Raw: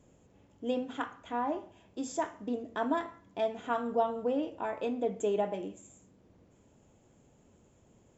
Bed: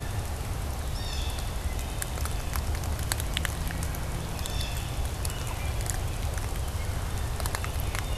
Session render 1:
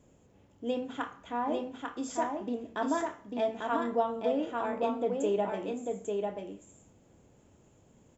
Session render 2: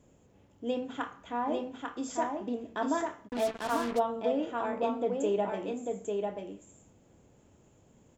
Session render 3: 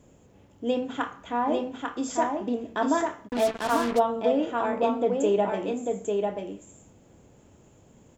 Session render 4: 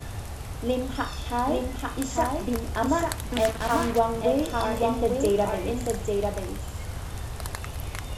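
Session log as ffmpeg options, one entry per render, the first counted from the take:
ffmpeg -i in.wav -filter_complex "[0:a]asplit=2[link_01][link_02];[link_02]adelay=30,volume=-13dB[link_03];[link_01][link_03]amix=inputs=2:normalize=0,aecho=1:1:845:0.668" out.wav
ffmpeg -i in.wav -filter_complex "[0:a]asplit=3[link_01][link_02][link_03];[link_01]afade=type=out:start_time=3.27:duration=0.02[link_04];[link_02]acrusher=bits=5:mix=0:aa=0.5,afade=type=in:start_time=3.27:duration=0.02,afade=type=out:start_time=3.98:duration=0.02[link_05];[link_03]afade=type=in:start_time=3.98:duration=0.02[link_06];[link_04][link_05][link_06]amix=inputs=3:normalize=0" out.wav
ffmpeg -i in.wav -af "volume=6dB" out.wav
ffmpeg -i in.wav -i bed.wav -filter_complex "[1:a]volume=-3.5dB[link_01];[0:a][link_01]amix=inputs=2:normalize=0" out.wav

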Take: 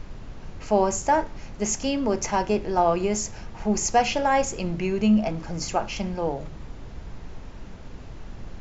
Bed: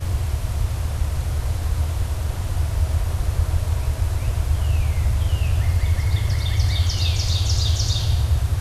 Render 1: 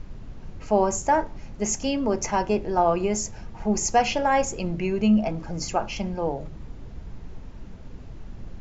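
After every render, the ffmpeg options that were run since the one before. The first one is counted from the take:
ffmpeg -i in.wav -af "afftdn=noise_reduction=6:noise_floor=-41" out.wav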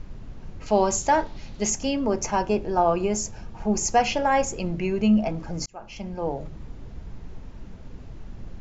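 ffmpeg -i in.wav -filter_complex "[0:a]asettb=1/sr,asplit=3[link_01][link_02][link_03];[link_01]atrim=end=0.664[link_04];[link_02]atrim=start=0.66:end=1.7,asetpts=PTS-STARTPTS,afade=type=in:duration=0.004:curve=qsin,afade=type=out:start_time=1.036:duration=0.004:curve=qsin,equalizer=frequency=3900:width_type=o:width=1:gain=12[link_05];[link_03]atrim=start=1.696[link_06];[link_04][link_05]acrossfade=duration=0.004:curve1=hsin:curve2=qsin[link_07];[link_07][link_06]acrossfade=duration=0.004:curve1=qsin:curve2=hsin,asettb=1/sr,asplit=3[link_08][link_09][link_10];[link_08]atrim=end=2.234[link_11];[link_09]atrim=start=2.23:end=3.86,asetpts=PTS-STARTPTS,afade=type=in:duration=0.004:curve=qsin,afade=type=out:start_time=1.626:duration=0.004:curve=qsin,bandreject=frequency=2000:width=9.9[link_12];[link_10]atrim=start=3.856[link_13];[link_11][link_12]acrossfade=duration=0.004:curve1=hsin:curve2=qsin[link_14];[link_14][link_13]acrossfade=duration=0.004:curve1=qsin:curve2=hsin,asplit=2[link_15][link_16];[link_15]atrim=end=5.66,asetpts=PTS-STARTPTS,afade=type=out:start_time=5.656:duration=0.004:curve=hsin[link_17];[link_16]atrim=start=5.66,asetpts=PTS-STARTPTS,afade=type=in:duration=0.7[link_18];[link_17][link_18]concat=n=2:v=0:a=1" out.wav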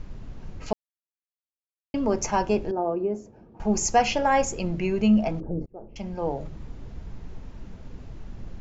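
ffmpeg -i in.wav -filter_complex "[0:a]asettb=1/sr,asplit=3[link_01][link_02][link_03];[link_01]atrim=end=2.714[link_04];[link_02]atrim=start=2.71:end=3.6,asetpts=PTS-STARTPTS,afade=type=in:duration=0.004:curve=qsin,afade=type=out:start_time=0.886:duration=0.004:curve=qsin,bandpass=frequency=350:width_type=q:width=1.4[link_05];[link_03]atrim=start=3.596[link_06];[link_04][link_05]acrossfade=duration=0.004:curve1=hsin:curve2=qsin[link_07];[link_07][link_06]acrossfade=duration=0.004:curve1=qsin:curve2=hsin,asettb=1/sr,asplit=3[link_08][link_09][link_10];[link_08]atrim=end=5.404[link_11];[link_09]atrim=start=5.4:end=5.96,asetpts=PTS-STARTPTS,afade=type=in:duration=0.004:curve=qsin,afade=type=out:start_time=0.556:duration=0.004:curve=qsin,lowpass=frequency=430:width_type=q:width=2.4[link_12];[link_10]atrim=start=5.956[link_13];[link_11][link_12]acrossfade=duration=0.004:curve1=hsin:curve2=qsin[link_14];[link_14][link_13]acrossfade=duration=0.004:curve1=qsin:curve2=hsin,asplit=3[link_15][link_16][link_17];[link_15]atrim=end=0.73,asetpts=PTS-STARTPTS,afade=type=out:start_time=0.726:duration=0.004:curve=hsin[link_18];[link_16]atrim=start=0.73:end=1.94,asetpts=PTS-STARTPTS,volume=0[link_19];[link_17]atrim=start=1.94,asetpts=PTS-STARTPTS,afade=type=in:duration=0.004:curve=hsin[link_20];[link_18][link_19][link_20]concat=n=3:v=0:a=1" out.wav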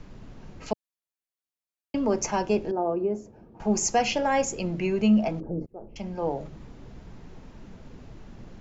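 ffmpeg -i in.wav -filter_complex "[0:a]acrossover=split=130|680|1700[link_01][link_02][link_03][link_04];[link_01]acompressor=threshold=-43dB:ratio=6[link_05];[link_03]alimiter=level_in=1dB:limit=-24dB:level=0:latency=1:release=416,volume=-1dB[link_06];[link_05][link_02][link_06][link_04]amix=inputs=4:normalize=0" out.wav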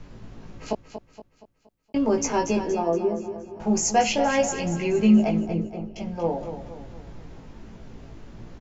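ffmpeg -i in.wav -filter_complex "[0:a]asplit=2[link_01][link_02];[link_02]adelay=18,volume=-2.5dB[link_03];[link_01][link_03]amix=inputs=2:normalize=0,aecho=1:1:235|470|705|940|1175:0.316|0.145|0.0669|0.0308|0.0142" out.wav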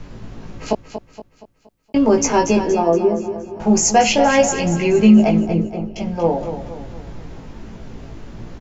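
ffmpeg -i in.wav -af "volume=8dB,alimiter=limit=-3dB:level=0:latency=1" out.wav

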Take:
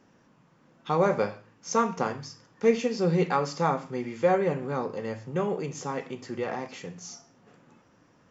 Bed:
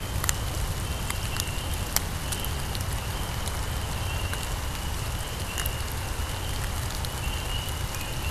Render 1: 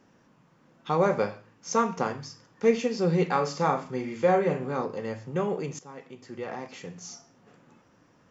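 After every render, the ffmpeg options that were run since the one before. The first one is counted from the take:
ffmpeg -i in.wav -filter_complex "[0:a]asettb=1/sr,asplit=3[link_01][link_02][link_03];[link_01]atrim=end=3.314[link_04];[link_02]atrim=start=3.31:end=4.85,asetpts=PTS-STARTPTS,afade=type=in:duration=0.004:curve=qsin,afade=type=out:start_time=1.536:duration=0.004:curve=qsin,asplit=2[link_05][link_06];[link_06]adelay=39,volume=-7dB[link_07];[link_05][link_07]amix=inputs=2:normalize=0,atrim=end_sample=67914[link_08];[link_03]atrim=start=4.846[link_09];[link_04][link_08]acrossfade=duration=0.004:curve1=hsin:curve2=qsin[link_10];[link_10][link_09]acrossfade=duration=0.004:curve1=qsin:curve2=hsin,asplit=2[link_11][link_12];[link_11]atrim=end=5.79,asetpts=PTS-STARTPTS,afade=type=out:start_time=5.786:duration=0.004:curve=hsin:silence=0.158489[link_13];[link_12]atrim=start=5.79,asetpts=PTS-STARTPTS,afade=type=in:duration=1.23:silence=0.158489[link_14];[link_13][link_14]concat=n=2:v=0:a=1" out.wav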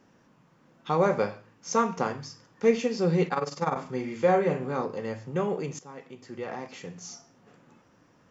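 ffmpeg -i in.wav -filter_complex "[0:a]asettb=1/sr,asplit=3[link_01][link_02][link_03];[link_01]atrim=end=3.284[link_04];[link_02]atrim=start=3.28:end=3.76,asetpts=PTS-STARTPTS,afade=type=in:duration=0.004:curve=qsin,afade=type=out:start_time=0.476:duration=0.004:curve=qsin,tremolo=f=20:d=0.788[link_05];[link_03]atrim=start=3.756[link_06];[link_04][link_05]acrossfade=duration=0.004:curve1=hsin:curve2=qsin[link_07];[link_07][link_06]acrossfade=duration=0.004:curve1=qsin:curve2=hsin" out.wav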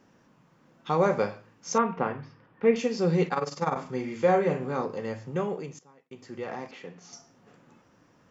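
ffmpeg -i in.wav -filter_complex "[0:a]asettb=1/sr,asplit=3[link_01][link_02][link_03];[link_01]atrim=end=1.784[link_04];[link_02]atrim=start=1.78:end=2.76,asetpts=PTS-STARTPTS,afade=type=in:duration=0.004:curve=qsin,afade=type=out:start_time=0.976:duration=0.004:curve=qsin,lowpass=frequency=2900:width=0.5412,lowpass=frequency=2900:width=1.3066[link_05];[link_03]atrim=start=2.756[link_06];[link_04][link_05]acrossfade=duration=0.004:curve1=hsin:curve2=qsin[link_07];[link_07][link_06]acrossfade=duration=0.004:curve1=qsin:curve2=hsin,asettb=1/sr,asplit=3[link_08][link_09][link_10];[link_08]atrim=end=6.714[link_11];[link_09]atrim=start=6.71:end=7.13,asetpts=PTS-STARTPTS,afade=type=in:duration=0.004:curve=qsin,afade=type=out:start_time=0.416:duration=0.004:curve=qsin,acrossover=split=200 4000:gain=0.2 1 0.158[link_12][link_13][link_14];[link_12][link_13][link_14]amix=inputs=3:normalize=0[link_15];[link_10]atrim=start=7.126[link_16];[link_11][link_15]acrossfade=duration=0.004:curve1=hsin:curve2=qsin[link_17];[link_17][link_16]acrossfade=duration=0.004:curve1=qsin:curve2=hsin,asplit=2[link_18][link_19];[link_18]atrim=end=6.11,asetpts=PTS-STARTPTS,afade=type=out:start_time=5.3:duration=0.81[link_20];[link_19]atrim=start=6.11,asetpts=PTS-STARTPTS,afade=type=in:duration=0.004:curve=hsin[link_21];[link_20][link_21]concat=n=2:v=0:a=1" out.wav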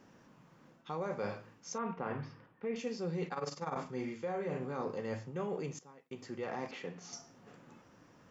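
ffmpeg -i in.wav -af "alimiter=limit=-17dB:level=0:latency=1:release=113,areverse,acompressor=threshold=-35dB:ratio=6,areverse" out.wav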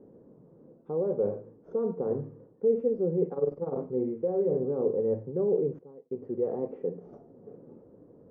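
ffmpeg -i in.wav -filter_complex "[0:a]asplit=2[link_01][link_02];[link_02]acrusher=samples=9:mix=1:aa=0.000001,volume=-5dB[link_03];[link_01][link_03]amix=inputs=2:normalize=0,lowpass=frequency=450:width_type=q:width=3.6" out.wav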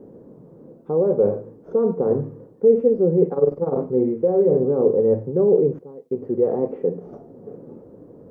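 ffmpeg -i in.wav -af "volume=10dB" out.wav

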